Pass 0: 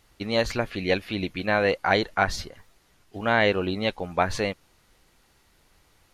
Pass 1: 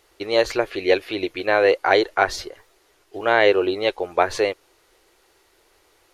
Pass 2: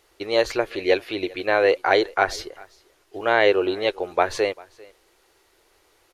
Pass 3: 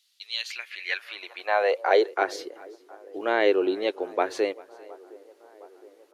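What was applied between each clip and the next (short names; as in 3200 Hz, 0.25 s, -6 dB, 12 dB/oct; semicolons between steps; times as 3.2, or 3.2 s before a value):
resonant low shelf 280 Hz -9.5 dB, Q 3; gain +3 dB
echo 0.395 s -24 dB; gain -1.5 dB
band-limited delay 0.715 s, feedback 65%, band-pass 640 Hz, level -22 dB; high-pass sweep 3700 Hz -> 280 Hz, 0.24–2.37; gain -6.5 dB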